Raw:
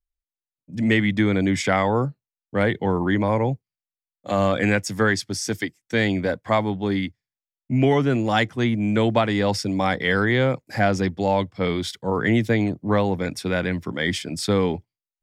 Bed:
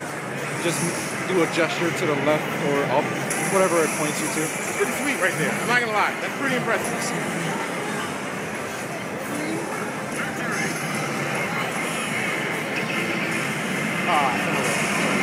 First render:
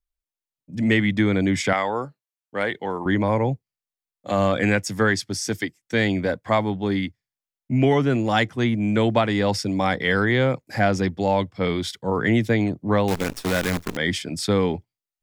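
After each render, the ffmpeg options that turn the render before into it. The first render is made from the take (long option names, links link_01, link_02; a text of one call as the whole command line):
ffmpeg -i in.wav -filter_complex "[0:a]asettb=1/sr,asplit=3[link_01][link_02][link_03];[link_01]atrim=end=1.734[link_04];[link_02]atrim=start=1.73:end=3.06,asetpts=PTS-STARTPTS,afade=type=in:duration=0.004:curve=qsin,afade=type=out:start_time=1.326:duration=0.004:curve=qsin,highpass=frequency=620:poles=1[link_05];[link_03]atrim=start=3.056[link_06];[link_04][link_05]acrossfade=duration=0.004:curve1=hsin:curve2=qsin[link_07];[link_07][link_06]acrossfade=duration=0.004:curve1=qsin:curve2=hsin,asettb=1/sr,asplit=3[link_08][link_09][link_10];[link_08]atrim=end=13.084[link_11];[link_09]atrim=start=13.08:end=13.97,asetpts=PTS-STARTPTS,afade=type=in:duration=0.004:curve=qsin,afade=type=out:start_time=0.886:duration=0.004:curve=qsin,acrusher=bits=5:dc=4:mix=0:aa=0.000001[link_12];[link_10]atrim=start=13.966[link_13];[link_11][link_12]acrossfade=duration=0.004:curve1=hsin:curve2=qsin[link_14];[link_14][link_13]acrossfade=duration=0.004:curve1=qsin:curve2=hsin" out.wav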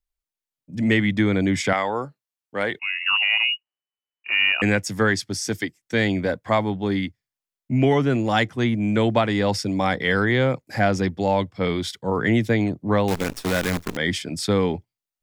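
ffmpeg -i in.wav -filter_complex "[0:a]asettb=1/sr,asplit=3[link_01][link_02][link_03];[link_01]atrim=end=2.794[link_04];[link_02]atrim=start=2.79:end=4.62,asetpts=PTS-STARTPTS,afade=type=in:duration=0.004:curve=qsin,afade=type=out:start_time=1.826:duration=0.004:curve=qsin,lowpass=frequency=2600:width_type=q:width=0.5098,lowpass=frequency=2600:width_type=q:width=0.6013,lowpass=frequency=2600:width_type=q:width=0.9,lowpass=frequency=2600:width_type=q:width=2.563,afreqshift=-3000[link_05];[link_03]atrim=start=4.616[link_06];[link_04][link_05]acrossfade=duration=0.004:curve1=hsin:curve2=qsin[link_07];[link_07][link_06]acrossfade=duration=0.004:curve1=qsin:curve2=hsin" out.wav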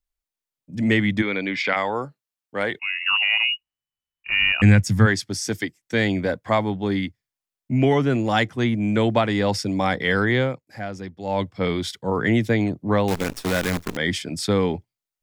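ffmpeg -i in.wav -filter_complex "[0:a]asplit=3[link_01][link_02][link_03];[link_01]afade=type=out:start_time=1.21:duration=0.02[link_04];[link_02]highpass=320,equalizer=frequency=350:width_type=q:width=4:gain=-6,equalizer=frequency=700:width_type=q:width=4:gain=-7,equalizer=frequency=2400:width_type=q:width=4:gain=8,equalizer=frequency=4500:width_type=q:width=4:gain=5,lowpass=frequency=4600:width=0.5412,lowpass=frequency=4600:width=1.3066,afade=type=in:start_time=1.21:duration=0.02,afade=type=out:start_time=1.75:duration=0.02[link_05];[link_03]afade=type=in:start_time=1.75:duration=0.02[link_06];[link_04][link_05][link_06]amix=inputs=3:normalize=0,asplit=3[link_07][link_08][link_09];[link_07]afade=type=out:start_time=3.46:duration=0.02[link_10];[link_08]asubboost=boost=8:cutoff=150,afade=type=in:start_time=3.46:duration=0.02,afade=type=out:start_time=5.05:duration=0.02[link_11];[link_09]afade=type=in:start_time=5.05:duration=0.02[link_12];[link_10][link_11][link_12]amix=inputs=3:normalize=0,asplit=3[link_13][link_14][link_15];[link_13]atrim=end=10.59,asetpts=PTS-STARTPTS,afade=type=out:start_time=10.38:duration=0.21:silence=0.266073[link_16];[link_14]atrim=start=10.59:end=11.22,asetpts=PTS-STARTPTS,volume=-11.5dB[link_17];[link_15]atrim=start=11.22,asetpts=PTS-STARTPTS,afade=type=in:duration=0.21:silence=0.266073[link_18];[link_16][link_17][link_18]concat=n=3:v=0:a=1" out.wav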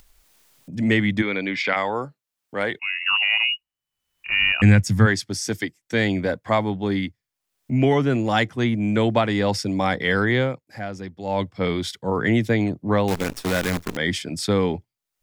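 ffmpeg -i in.wav -af "acompressor=mode=upward:threshold=-33dB:ratio=2.5" out.wav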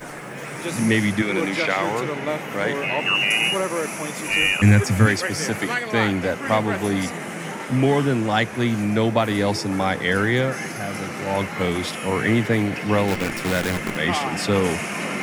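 ffmpeg -i in.wav -i bed.wav -filter_complex "[1:a]volume=-5dB[link_01];[0:a][link_01]amix=inputs=2:normalize=0" out.wav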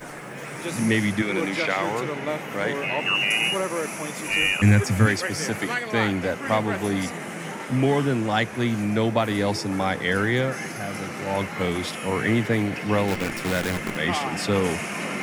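ffmpeg -i in.wav -af "volume=-2.5dB" out.wav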